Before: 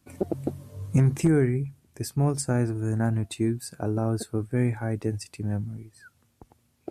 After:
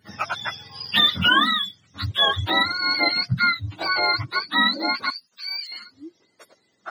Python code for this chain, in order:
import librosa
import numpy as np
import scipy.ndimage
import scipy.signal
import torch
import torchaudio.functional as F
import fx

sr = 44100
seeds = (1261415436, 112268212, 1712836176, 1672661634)

y = fx.octave_mirror(x, sr, pivot_hz=690.0)
y = fx.filter_sweep_highpass(y, sr, from_hz=120.0, to_hz=340.0, start_s=4.01, end_s=5.1, q=1.5)
y = fx.differentiator(y, sr, at=(5.1, 5.72))
y = y * librosa.db_to_amplitude(7.5)